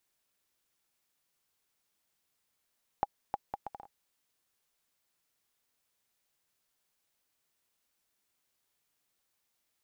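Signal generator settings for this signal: bouncing ball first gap 0.31 s, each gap 0.64, 813 Hz, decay 32 ms -15.5 dBFS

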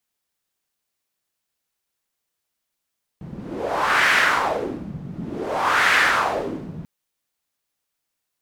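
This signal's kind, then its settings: wind-like swept noise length 3.64 s, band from 160 Hz, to 1.8 kHz, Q 2.7, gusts 2, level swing 18 dB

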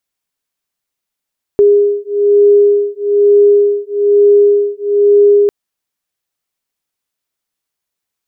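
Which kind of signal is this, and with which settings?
beating tones 408 Hz, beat 1.1 Hz, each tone -9.5 dBFS 3.90 s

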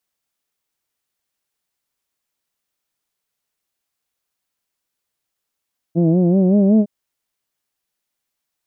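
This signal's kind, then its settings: formant vowel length 0.91 s, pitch 162 Hz, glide +5 st, F1 270 Hz, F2 620 Hz, F3 2.5 kHz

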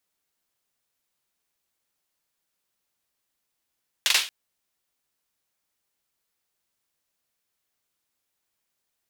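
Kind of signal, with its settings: hand clap length 0.23 s, bursts 3, apart 42 ms, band 3.1 kHz, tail 0.33 s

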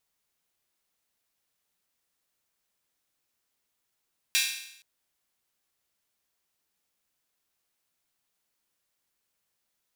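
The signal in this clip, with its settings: open hi-hat length 0.47 s, high-pass 2.5 kHz, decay 0.76 s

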